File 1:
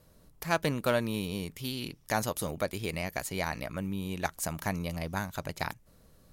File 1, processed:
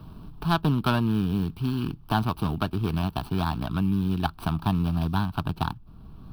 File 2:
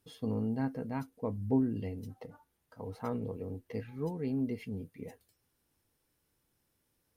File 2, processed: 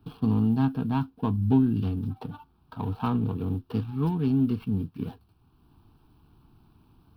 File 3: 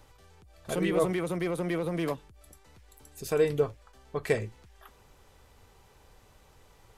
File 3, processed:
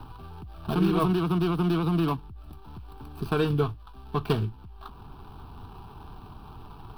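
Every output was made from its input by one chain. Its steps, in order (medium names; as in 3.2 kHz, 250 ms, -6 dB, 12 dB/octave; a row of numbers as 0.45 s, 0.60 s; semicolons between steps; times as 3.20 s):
median filter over 25 samples; static phaser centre 2 kHz, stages 6; three bands compressed up and down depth 40%; normalise loudness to -27 LUFS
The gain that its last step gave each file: +12.0 dB, +13.0 dB, +10.5 dB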